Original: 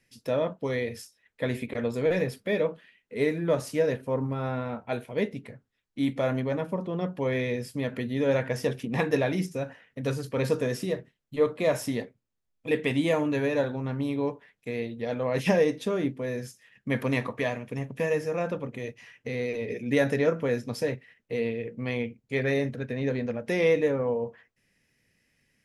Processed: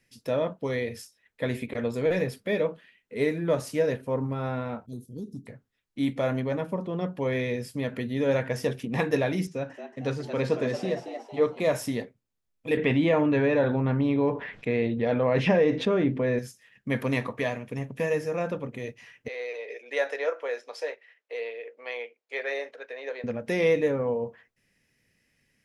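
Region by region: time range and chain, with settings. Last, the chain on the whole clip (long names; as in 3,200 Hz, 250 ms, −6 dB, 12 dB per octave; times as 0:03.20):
0:04.86–0:05.47: inverse Chebyshev band-stop filter 890–2,000 Hz, stop band 70 dB + downward compressor, threshold −32 dBFS
0:09.47–0:11.60: band-pass filter 110–5,400 Hz + echo with shifted repeats 227 ms, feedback 45%, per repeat +110 Hz, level −9.5 dB
0:12.77–0:16.39: low-pass filter 2,900 Hz + envelope flattener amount 50%
0:19.28–0:23.24: inverse Chebyshev high-pass filter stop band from 190 Hz, stop band 50 dB + high-frequency loss of the air 76 metres
whole clip: no processing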